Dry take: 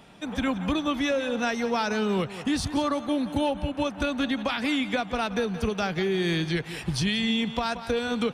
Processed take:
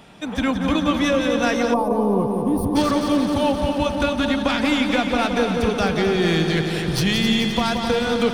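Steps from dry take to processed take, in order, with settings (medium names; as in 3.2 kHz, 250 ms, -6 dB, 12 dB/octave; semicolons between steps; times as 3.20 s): tracing distortion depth 0.036 ms; multi-head delay 87 ms, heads second and third, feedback 72%, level -8.5 dB; time-frequency box 1.73–2.76 s, 1.2–8.9 kHz -24 dB; trim +5 dB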